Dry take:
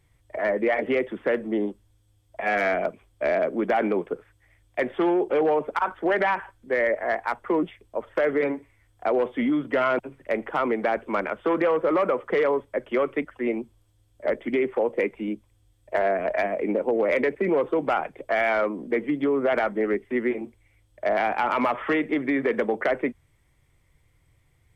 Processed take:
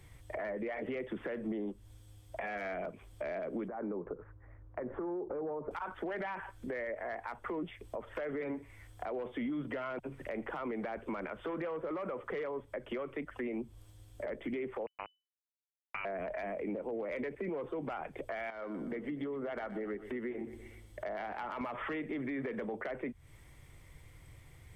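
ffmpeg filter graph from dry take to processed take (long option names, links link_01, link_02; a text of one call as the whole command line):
ffmpeg -i in.wav -filter_complex "[0:a]asettb=1/sr,asplit=3[link_01][link_02][link_03];[link_01]atrim=end=3.684[link_04];[link_02]atrim=start=3.68:end=5.71,asetpts=PTS-STARTPTS,afade=type=in:duration=0.004:curve=qsin,afade=type=out:start_time=2.026:duration=0.004:curve=qsin,equalizer=frequency=720:width_type=o:width=0.36:gain=-5.5,acompressor=threshold=-37dB:ratio=4:attack=3.2:release=140:knee=1:detection=peak,lowpass=frequency=1300:width=0.5412,lowpass=frequency=1300:width=1.3066[link_05];[link_03]atrim=start=5.706[link_06];[link_04][link_05]acrossfade=duration=0.004:curve1=hsin:curve2=qsin[link_07];[link_07][link_06]acrossfade=duration=0.004:curve1=qsin:curve2=hsin,asettb=1/sr,asplit=3[link_08][link_09][link_10];[link_08]atrim=end=14.864[link_11];[link_09]atrim=start=14.86:end=16.05,asetpts=PTS-STARTPTS,afade=type=in:duration=0.004:curve=qsin,afade=type=out:start_time=1.186:duration=0.004:curve=qsin,highpass=frequency=740:width=0.5412,highpass=frequency=740:width=1.3066,acrusher=bits=3:mix=0:aa=0.5,lowpass=frequency=2600:width_type=q:width=0.5098,lowpass=frequency=2600:width_type=q:width=0.6013,lowpass=frequency=2600:width_type=q:width=0.9,lowpass=frequency=2600:width_type=q:width=2.563,afreqshift=-3000[link_12];[link_10]atrim=start=16.046[link_13];[link_11][link_12]acrossfade=duration=0.004:curve1=hsin:curve2=qsin[link_14];[link_14][link_13]acrossfade=duration=0.004:curve1=qsin:curve2=hsin,asettb=1/sr,asplit=3[link_15][link_16][link_17];[link_15]atrim=end=18.504[link_18];[link_16]atrim=start=18.5:end=21.61,asetpts=PTS-STARTPTS,afade=type=in:duration=0.004:curve=qsin,afade=type=out:start_time=3.106:duration=0.004:curve=qsin,bandreject=frequency=2400:width=11,acompressor=threshold=-45dB:ratio=2.5:attack=3.2:release=140:knee=1:detection=peak,aecho=1:1:122|244|366|488:0.178|0.0818|0.0376|0.0173,atrim=end_sample=137151[link_19];[link_17]atrim=start=21.606[link_20];[link_18][link_19]acrossfade=duration=0.004:curve1=hsin:curve2=qsin[link_21];[link_21][link_20]acrossfade=duration=0.004:curve1=qsin:curve2=hsin,acompressor=threshold=-35dB:ratio=3,alimiter=level_in=7.5dB:limit=-24dB:level=0:latency=1:release=27,volume=-7.5dB,acrossover=split=150[link_22][link_23];[link_23]acompressor=threshold=-50dB:ratio=2[link_24];[link_22][link_24]amix=inputs=2:normalize=0,volume=8dB" out.wav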